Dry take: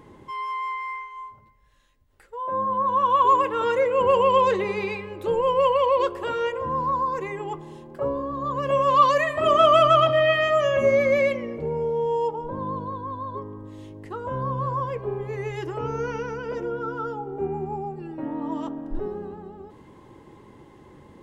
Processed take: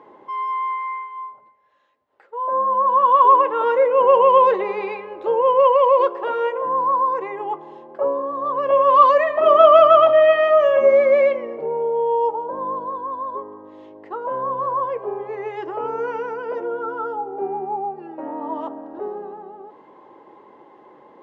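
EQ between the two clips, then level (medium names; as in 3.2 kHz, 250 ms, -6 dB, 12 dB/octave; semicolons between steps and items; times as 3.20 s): high-pass 320 Hz 12 dB/octave; distance through air 180 m; peaking EQ 750 Hz +11 dB 1.9 oct; -2.0 dB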